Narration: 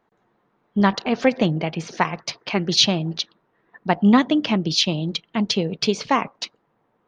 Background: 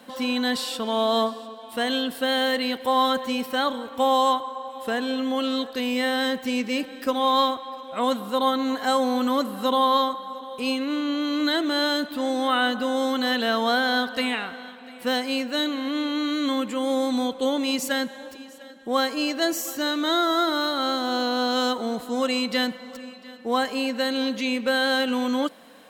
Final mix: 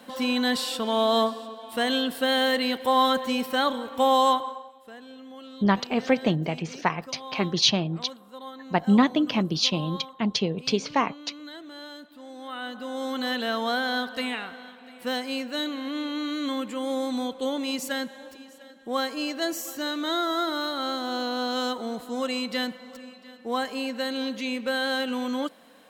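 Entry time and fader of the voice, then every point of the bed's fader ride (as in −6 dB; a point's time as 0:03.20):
4.85 s, −4.0 dB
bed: 0:04.49 0 dB
0:04.81 −18.5 dB
0:12.26 −18.5 dB
0:13.21 −4.5 dB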